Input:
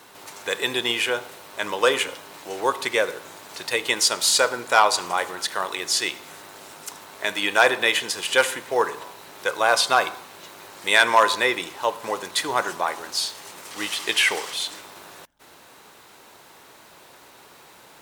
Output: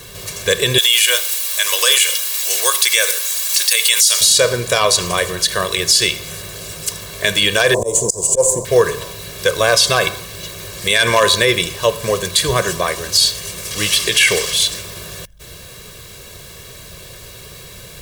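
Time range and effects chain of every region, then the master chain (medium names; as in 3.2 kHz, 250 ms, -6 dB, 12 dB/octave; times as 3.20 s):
0.78–4.21 s: high-pass 670 Hz + tilt EQ +4 dB/octave
7.74–8.65 s: median filter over 3 samples + FFT filter 190 Hz 0 dB, 510 Hz +7 dB, 980 Hz +12 dB, 1.4 kHz -28 dB, 3.4 kHz -27 dB, 7.5 kHz +12 dB, 14 kHz -8 dB + slow attack 174 ms
whole clip: amplifier tone stack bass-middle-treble 10-0-1; comb 1.8 ms, depth 81%; loudness maximiser +34.5 dB; trim -1 dB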